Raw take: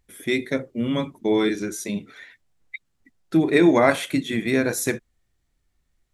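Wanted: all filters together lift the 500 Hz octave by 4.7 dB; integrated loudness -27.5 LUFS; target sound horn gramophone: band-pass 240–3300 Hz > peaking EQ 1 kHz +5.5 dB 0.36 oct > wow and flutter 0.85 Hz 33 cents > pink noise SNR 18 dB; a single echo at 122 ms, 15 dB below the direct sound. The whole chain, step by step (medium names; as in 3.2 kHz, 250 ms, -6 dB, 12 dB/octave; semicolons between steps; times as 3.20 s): band-pass 240–3300 Hz; peaking EQ 500 Hz +6.5 dB; peaking EQ 1 kHz +5.5 dB 0.36 oct; delay 122 ms -15 dB; wow and flutter 0.85 Hz 33 cents; pink noise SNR 18 dB; trim -8 dB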